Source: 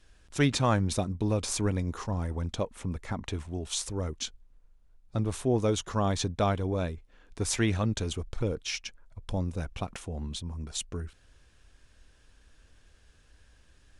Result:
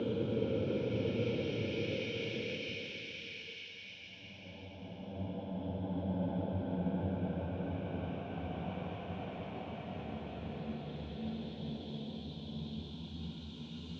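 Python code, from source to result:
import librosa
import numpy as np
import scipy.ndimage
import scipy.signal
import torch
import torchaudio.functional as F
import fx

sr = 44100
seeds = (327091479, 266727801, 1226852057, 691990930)

y = fx.paulstretch(x, sr, seeds[0], factor=6.0, window_s=1.0, from_s=8.3)
y = fx.cabinet(y, sr, low_hz=140.0, low_slope=12, high_hz=3200.0, hz=(140.0, 220.0, 1200.0, 1900.0), db=(4, 3, -10, -6))
y = fx.band_widen(y, sr, depth_pct=40)
y = y * 10.0 ** (-1.5 / 20.0)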